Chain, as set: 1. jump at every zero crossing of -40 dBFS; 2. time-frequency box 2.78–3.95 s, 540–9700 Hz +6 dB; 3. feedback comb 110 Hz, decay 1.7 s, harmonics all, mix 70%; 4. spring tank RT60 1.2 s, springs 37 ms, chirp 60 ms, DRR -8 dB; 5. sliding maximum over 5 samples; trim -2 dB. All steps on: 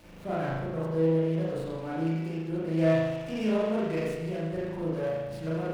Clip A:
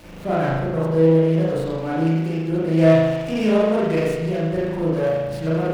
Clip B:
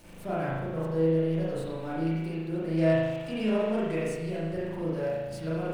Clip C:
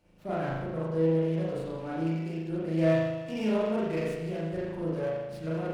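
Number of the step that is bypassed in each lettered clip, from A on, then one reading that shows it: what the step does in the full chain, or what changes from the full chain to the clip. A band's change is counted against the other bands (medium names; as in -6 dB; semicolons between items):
3, loudness change +10.0 LU; 5, distortion -18 dB; 1, distortion -21 dB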